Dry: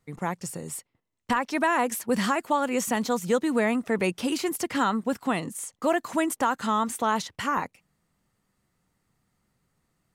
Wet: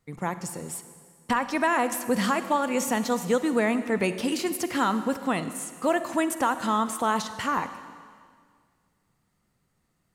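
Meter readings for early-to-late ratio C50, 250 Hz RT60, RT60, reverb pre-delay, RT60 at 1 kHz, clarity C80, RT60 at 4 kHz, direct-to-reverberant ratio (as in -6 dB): 11.5 dB, 2.1 s, 1.9 s, 38 ms, 1.9 s, 12.5 dB, 1.8 s, 11.0 dB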